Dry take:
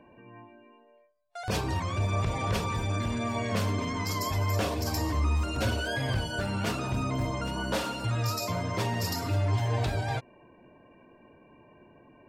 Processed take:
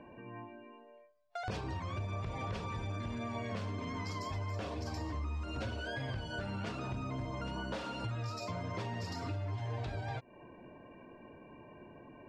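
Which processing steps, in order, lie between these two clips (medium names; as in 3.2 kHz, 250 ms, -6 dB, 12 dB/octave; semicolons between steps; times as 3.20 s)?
compression, threshold -39 dBFS, peak gain reduction 15 dB; distance through air 98 m; trim +2.5 dB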